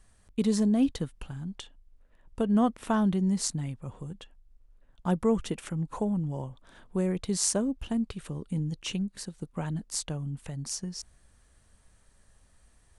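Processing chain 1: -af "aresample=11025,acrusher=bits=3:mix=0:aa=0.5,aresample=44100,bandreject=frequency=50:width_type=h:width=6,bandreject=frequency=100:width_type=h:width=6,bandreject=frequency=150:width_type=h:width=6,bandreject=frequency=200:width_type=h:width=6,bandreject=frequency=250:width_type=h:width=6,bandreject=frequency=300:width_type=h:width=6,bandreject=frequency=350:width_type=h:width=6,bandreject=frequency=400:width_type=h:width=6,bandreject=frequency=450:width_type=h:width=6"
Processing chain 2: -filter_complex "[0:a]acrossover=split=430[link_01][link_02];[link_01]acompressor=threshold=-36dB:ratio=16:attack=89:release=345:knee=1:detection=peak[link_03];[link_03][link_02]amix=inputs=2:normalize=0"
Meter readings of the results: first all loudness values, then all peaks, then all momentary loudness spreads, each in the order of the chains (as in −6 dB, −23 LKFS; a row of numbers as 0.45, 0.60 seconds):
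−29.5, −34.5 LKFS; −13.5, −9.5 dBFS; 20, 11 LU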